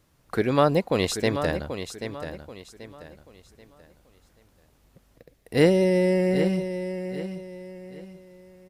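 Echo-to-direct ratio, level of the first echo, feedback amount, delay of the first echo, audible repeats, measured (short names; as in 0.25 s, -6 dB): -9.0 dB, -9.5 dB, 33%, 0.784 s, 3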